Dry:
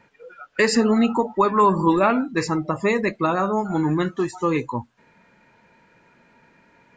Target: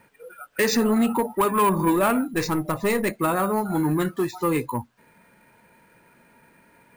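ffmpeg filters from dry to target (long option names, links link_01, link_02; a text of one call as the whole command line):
ffmpeg -i in.wav -filter_complex "[0:a]acrusher=samples=4:mix=1:aa=0.000001,asettb=1/sr,asplit=3[link_01][link_02][link_03];[link_01]atrim=end=2.334[link_04];[link_02]atrim=start=2.33:end=3.2,asetpts=PTS-STARTPTS,afade=type=in:duration=0.004:curve=qsin,afade=type=out:start_time=0.866:duration=0.004:curve=qsin,aeval=exprs='0.355*(cos(1*acos(clip(val(0)/0.355,-1,1)))-cos(1*PI/2))+0.0251*(cos(3*acos(clip(val(0)/0.355,-1,1)))-cos(3*PI/2))+0.0178*(cos(5*acos(clip(val(0)/0.355,-1,1)))-cos(5*PI/2))+0.0178*(cos(8*acos(clip(val(0)/0.355,-1,1)))-cos(8*PI/2))':channel_layout=same[link_05];[link_03]atrim=start=3.196[link_06];[link_04][link_05]acrossfade=duration=0.004:curve1=hsin:curve2=qsin[link_07];[link_07][link_06]acrossfade=duration=0.004:curve1=qsin:curve2=hsin,asoftclip=type=tanh:threshold=-14dB" out.wav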